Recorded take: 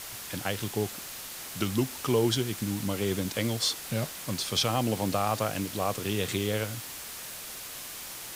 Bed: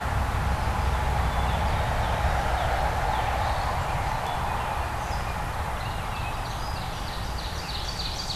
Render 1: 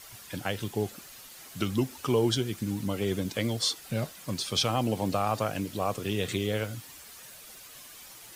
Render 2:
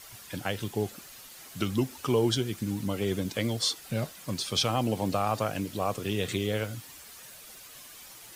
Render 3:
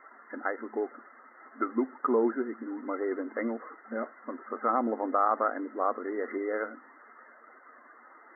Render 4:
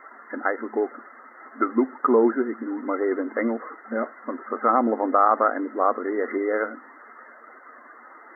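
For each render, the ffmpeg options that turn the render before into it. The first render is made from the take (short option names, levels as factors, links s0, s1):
-af "afftdn=nr=10:nf=-41"
-af anull
-af "equalizer=f=1300:t=o:w=0.34:g=10,afftfilt=real='re*between(b*sr/4096,220,2100)':imag='im*between(b*sr/4096,220,2100)':win_size=4096:overlap=0.75"
-af "volume=2.37"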